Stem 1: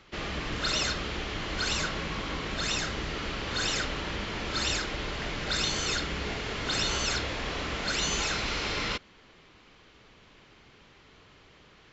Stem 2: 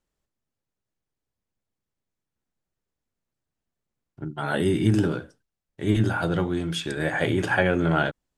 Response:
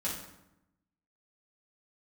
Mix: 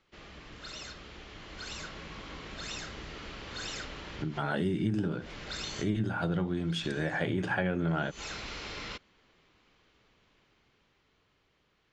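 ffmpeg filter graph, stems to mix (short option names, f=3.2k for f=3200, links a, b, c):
-filter_complex "[0:a]dynaudnorm=f=200:g=17:m=6dB,volume=-15.5dB[a];[1:a]lowpass=5.8k,adynamicequalizer=threshold=0.01:dfrequency=190:dqfactor=3:tfrequency=190:tqfactor=3:attack=5:release=100:ratio=0.375:range=3.5:mode=boostabove:tftype=bell,volume=-0.5dB,asplit=2[b][c];[c]apad=whole_len=525762[d];[a][d]sidechaincompress=threshold=-39dB:ratio=8:attack=47:release=109[e];[e][b]amix=inputs=2:normalize=0,acompressor=threshold=-30dB:ratio=3"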